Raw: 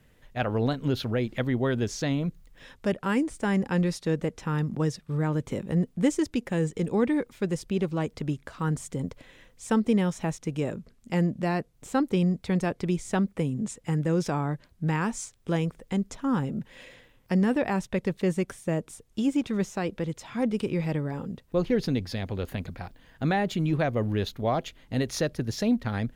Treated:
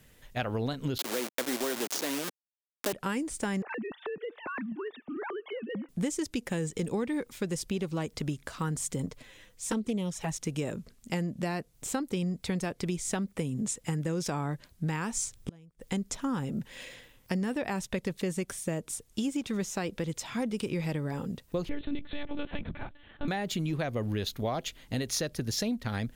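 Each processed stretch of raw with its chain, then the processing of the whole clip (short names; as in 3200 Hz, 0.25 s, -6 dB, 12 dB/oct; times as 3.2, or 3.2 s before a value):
0.98–2.93 level-crossing sampler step -27.5 dBFS + HPF 270 Hz 24 dB/oct + sample leveller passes 1
3.62–5.89 sine-wave speech + compressor 8:1, threshold -34 dBFS + thin delay 0.3 s, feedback 34%, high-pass 1400 Hz, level -21 dB
9.06–10.36 envelope flanger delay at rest 11.4 ms, full sweep at -19.5 dBFS + Doppler distortion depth 0.11 ms
15.16–15.81 low shelf 250 Hz +11 dB + flipped gate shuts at -21 dBFS, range -34 dB
21.69–23.28 air absorption 81 m + monotone LPC vocoder at 8 kHz 290 Hz
whole clip: high shelf 3500 Hz +10.5 dB; compressor, threshold -28 dBFS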